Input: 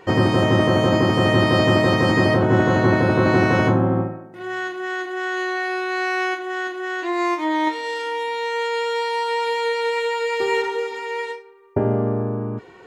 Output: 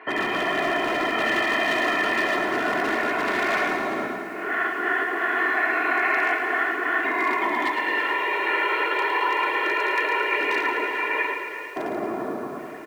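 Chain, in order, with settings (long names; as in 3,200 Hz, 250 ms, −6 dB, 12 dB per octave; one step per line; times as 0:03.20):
random phases in short frames
Chebyshev band-pass filter 170–2,300 Hz, order 3
single-tap delay 878 ms −20.5 dB
hard clipping −13.5 dBFS, distortion −16 dB
comb filter 2.9 ms, depth 69%
brickwall limiter −16 dBFS, peak gain reduction 7 dB
tilt shelving filter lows −9.5 dB, about 930 Hz
reverb whose tail is shaped and stops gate 480 ms rising, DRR 9.5 dB
feedback echo at a low word length 110 ms, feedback 55%, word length 8 bits, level −7.5 dB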